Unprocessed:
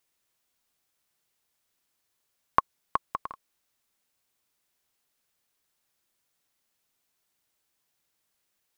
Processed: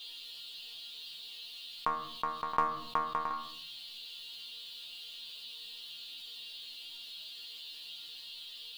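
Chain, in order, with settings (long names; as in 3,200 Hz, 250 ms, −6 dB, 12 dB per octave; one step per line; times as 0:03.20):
noise in a band 2,800–4,500 Hz −64 dBFS
resonators tuned to a chord D#3 fifth, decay 0.28 s
backwards echo 719 ms −6.5 dB
on a send at −14.5 dB: convolution reverb RT60 0.55 s, pre-delay 7 ms
on the sum: envelope flattener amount 50%
level +8 dB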